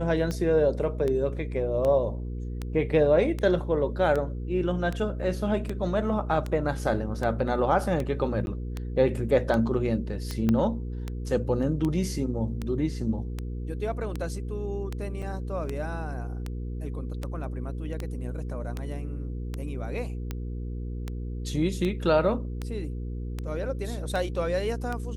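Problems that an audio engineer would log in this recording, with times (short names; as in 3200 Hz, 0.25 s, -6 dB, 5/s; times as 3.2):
hum 60 Hz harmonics 8 -33 dBFS
tick 78 rpm -18 dBFS
8.46–8.47 gap 11 ms
10.49 pop -13 dBFS
15.22–15.23 gap 5.9 ms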